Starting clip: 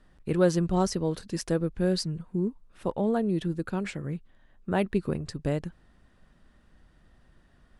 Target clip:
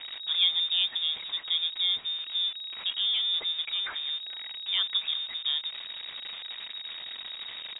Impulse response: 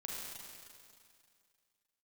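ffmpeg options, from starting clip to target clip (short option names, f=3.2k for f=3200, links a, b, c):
-filter_complex "[0:a]aeval=exprs='val(0)+0.5*0.0316*sgn(val(0))':c=same,lowpass=f=3.2k:t=q:w=0.5098,lowpass=f=3.2k:t=q:w=0.6013,lowpass=f=3.2k:t=q:w=0.9,lowpass=f=3.2k:t=q:w=2.563,afreqshift=-3800,asplit=2[a][b];[b]adelay=439,lowpass=f=1.3k:p=1,volume=-19dB,asplit=2[c][d];[d]adelay=439,lowpass=f=1.3k:p=1,volume=0.54,asplit=2[e][f];[f]adelay=439,lowpass=f=1.3k:p=1,volume=0.54,asplit=2[g][h];[h]adelay=439,lowpass=f=1.3k:p=1,volume=0.54[i];[a][c][e][g][i]amix=inputs=5:normalize=0,volume=-4dB"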